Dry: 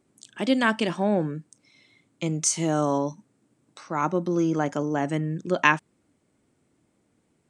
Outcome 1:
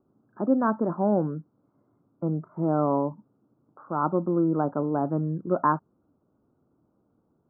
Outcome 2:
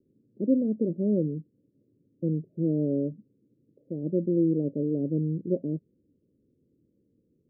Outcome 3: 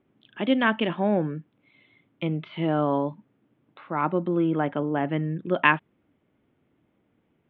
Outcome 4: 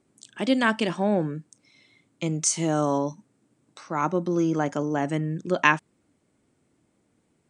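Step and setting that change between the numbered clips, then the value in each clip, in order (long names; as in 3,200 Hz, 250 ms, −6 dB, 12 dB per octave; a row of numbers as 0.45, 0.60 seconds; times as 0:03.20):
Butterworth low-pass, frequency: 1,400, 530, 3,500, 11,000 Hertz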